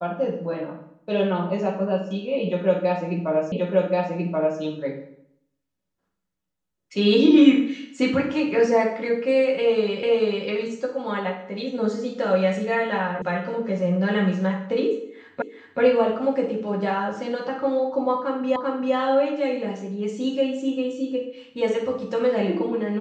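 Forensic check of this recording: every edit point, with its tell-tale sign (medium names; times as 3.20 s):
3.52 s: repeat of the last 1.08 s
10.03 s: repeat of the last 0.44 s
13.22 s: sound stops dead
15.42 s: repeat of the last 0.38 s
18.56 s: repeat of the last 0.39 s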